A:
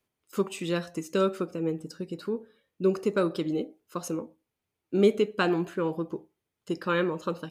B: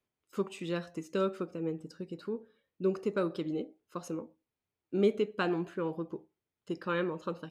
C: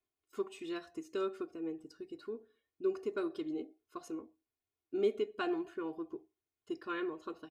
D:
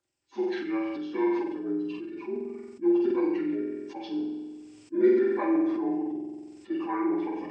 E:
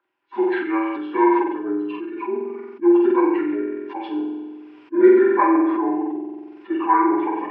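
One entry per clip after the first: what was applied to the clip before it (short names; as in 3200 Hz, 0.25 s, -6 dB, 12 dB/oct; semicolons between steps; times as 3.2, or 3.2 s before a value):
high shelf 7100 Hz -10.5 dB; gain -5.5 dB
comb 2.8 ms, depth 91%; gain -8 dB
inharmonic rescaling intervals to 80%; flutter echo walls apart 7.9 m, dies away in 0.73 s; sustainer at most 38 dB/s; gain +7.5 dB
speaker cabinet 330–2900 Hz, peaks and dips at 360 Hz +3 dB, 550 Hz -5 dB, 990 Hz +10 dB, 1500 Hz +6 dB; gain +8.5 dB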